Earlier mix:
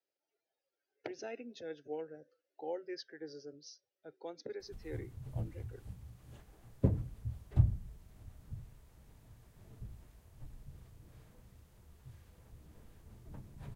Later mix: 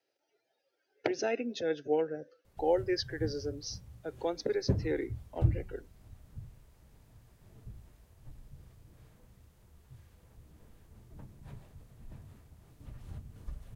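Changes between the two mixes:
speech +12.0 dB; background: entry -2.15 s

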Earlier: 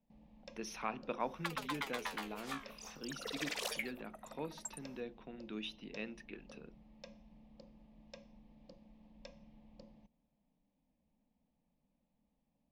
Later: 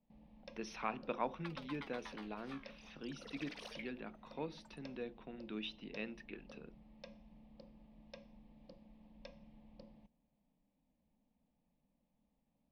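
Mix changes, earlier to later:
second sound -10.0 dB; master: add polynomial smoothing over 15 samples

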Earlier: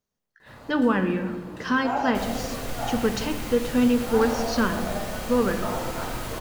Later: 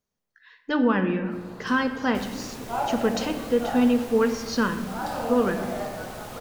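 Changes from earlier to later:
first sound: entry +0.85 s; second sound: send off

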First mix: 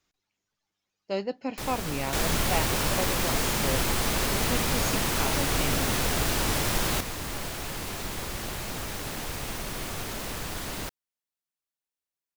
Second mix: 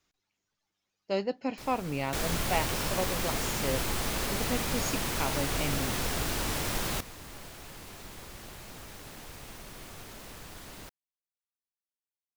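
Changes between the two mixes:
first sound -11.5 dB; second sound -4.5 dB

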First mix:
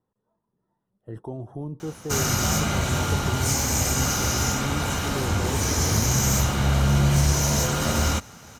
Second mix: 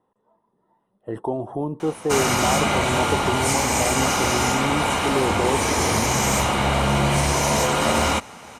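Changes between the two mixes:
background -4.5 dB; master: add EQ curve 130 Hz 0 dB, 220 Hz +7 dB, 1000 Hz +15 dB, 1500 Hz +7 dB, 2200 Hz +14 dB, 3800 Hz +8 dB, 6400 Hz +2 dB, 9200 Hz +12 dB, 14000 Hz -4 dB

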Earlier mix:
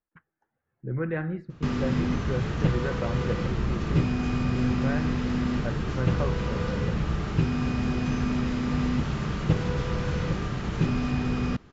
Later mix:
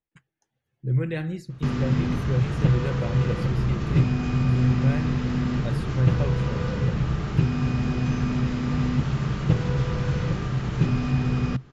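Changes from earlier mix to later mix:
speech: remove synth low-pass 1400 Hz, resonance Q 2; master: add bell 130 Hz +10.5 dB 0.25 oct

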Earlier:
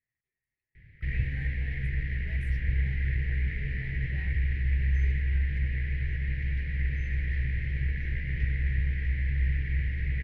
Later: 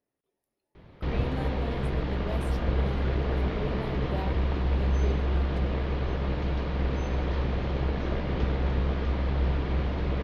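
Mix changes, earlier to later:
background: add band shelf 940 Hz +12.5 dB 1.3 oct; master: remove EQ curve 130 Hz 0 dB, 220 Hz -16 dB, 1100 Hz -26 dB, 1900 Hz +10 dB, 3500 Hz -14 dB

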